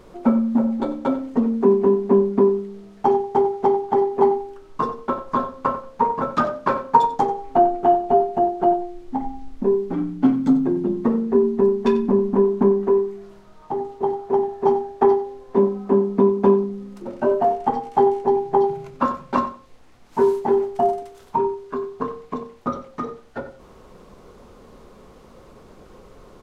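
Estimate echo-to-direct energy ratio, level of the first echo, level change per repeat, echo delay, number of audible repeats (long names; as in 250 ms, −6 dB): −14.0 dB, −14.0 dB, −15.0 dB, 92 ms, 2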